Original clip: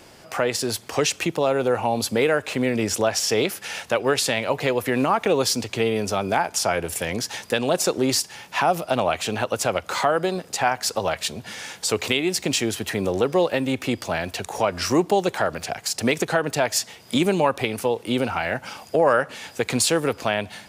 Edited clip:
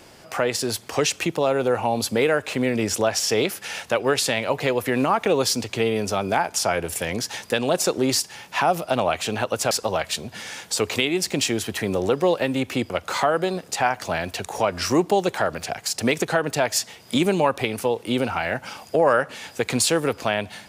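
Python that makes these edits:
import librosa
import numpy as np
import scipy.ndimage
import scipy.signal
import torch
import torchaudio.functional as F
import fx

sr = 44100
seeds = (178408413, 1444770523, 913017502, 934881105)

y = fx.edit(x, sr, fx.move(start_s=9.71, length_s=1.12, to_s=14.02), tone=tone)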